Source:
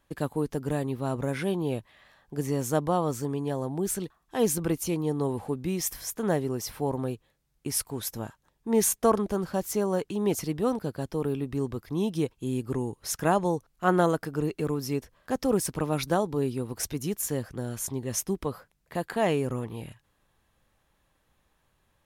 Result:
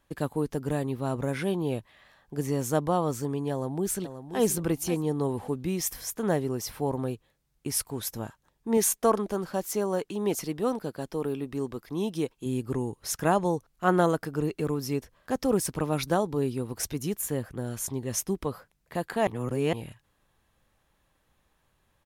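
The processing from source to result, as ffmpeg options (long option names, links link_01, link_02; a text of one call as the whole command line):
ffmpeg -i in.wav -filter_complex "[0:a]asplit=2[link_01][link_02];[link_02]afade=type=in:start_time=3.51:duration=0.01,afade=type=out:start_time=4.41:duration=0.01,aecho=0:1:530|1060|1590:0.316228|0.0790569|0.0197642[link_03];[link_01][link_03]amix=inputs=2:normalize=0,asettb=1/sr,asplit=3[link_04][link_05][link_06];[link_04]atrim=end=8.774[link_07];[link_05]atrim=start=8.77:end=12.46,asetpts=PTS-STARTPTS,afade=type=in:duration=0.004:curve=qsin,afade=type=out:start_time=3.686:duration=0.004:curve=qsin,equalizer=frequency=72:width=0.81:gain=-13[link_08];[link_06]atrim=start=12.456[link_09];[link_07][link_08]acrossfade=duration=0.004:curve1=hsin:curve2=qsin[link_10];[link_10][link_09]acrossfade=duration=0.004:curve1=qsin:curve2=hsin,asettb=1/sr,asplit=3[link_11][link_12][link_13];[link_11]atrim=end=17.174[link_14];[link_12]atrim=start=17.17:end=17.66,asetpts=PTS-STARTPTS,afade=type=in:duration=0.004:curve=qsin,afade=type=out:start_time=0.486:duration=0.004:curve=qsin,equalizer=frequency=5400:width=1.8:gain=-7.5[link_15];[link_13]atrim=start=17.656[link_16];[link_14][link_15]acrossfade=duration=0.004:curve1=hsin:curve2=qsin[link_17];[link_17][link_16]acrossfade=duration=0.004:curve1=qsin:curve2=hsin,asplit=3[link_18][link_19][link_20];[link_18]atrim=end=19.272[link_21];[link_19]atrim=start=19.268:end=19.732,asetpts=PTS-STARTPTS,areverse[link_22];[link_20]atrim=start=19.728[link_23];[link_21][link_22]acrossfade=duration=0.004:curve1=hsin:curve2=hsin[link_24];[link_24][link_23]acrossfade=duration=0.004:curve1=hsin:curve2=hsin" out.wav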